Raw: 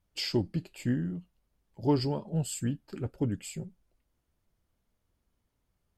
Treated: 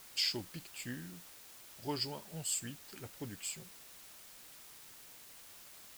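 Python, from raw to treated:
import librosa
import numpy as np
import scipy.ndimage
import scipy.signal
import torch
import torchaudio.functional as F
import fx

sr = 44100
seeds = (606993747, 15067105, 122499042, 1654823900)

y = fx.tilt_shelf(x, sr, db=-9.5, hz=970.0)
y = fx.quant_dither(y, sr, seeds[0], bits=8, dither='triangular')
y = y * librosa.db_to_amplitude(-7.0)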